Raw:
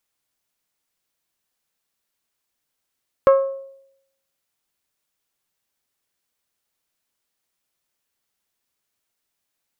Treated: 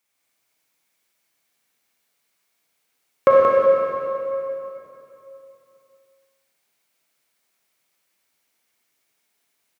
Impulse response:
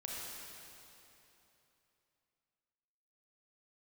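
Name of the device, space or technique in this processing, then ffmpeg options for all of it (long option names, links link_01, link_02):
PA in a hall: -filter_complex "[0:a]highpass=130,equalizer=frequency=2200:width_type=o:width=0.24:gain=7,aecho=1:1:179:0.501[link_01];[1:a]atrim=start_sample=2205[link_02];[link_01][link_02]afir=irnorm=-1:irlink=0,volume=6dB"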